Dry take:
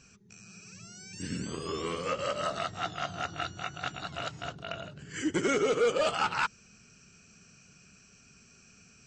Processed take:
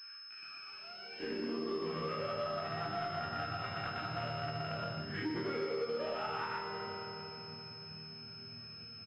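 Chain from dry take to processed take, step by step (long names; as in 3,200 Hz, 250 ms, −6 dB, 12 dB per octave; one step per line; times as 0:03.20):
0:02.66–0:03.13: comb filter 5.9 ms
on a send at −11 dB: convolution reverb RT60 3.3 s, pre-delay 4 ms
on the sum: high-pass filter sweep 1,500 Hz → 97 Hz, 0:00.40–0:02.26
high-frequency loss of the air 71 metres
single-tap delay 121 ms −4.5 dB
in parallel at −6 dB: wave folding −29.5 dBFS
on the sum: low-shelf EQ 87 Hz −11 dB
resonators tuned to a chord D#2 major, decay 0.56 s
hum removal 70 Hz, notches 37
downward compressor 6 to 1, threshold −51 dBFS, peak gain reduction 16 dB
switching amplifier with a slow clock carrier 5,200 Hz
level +16 dB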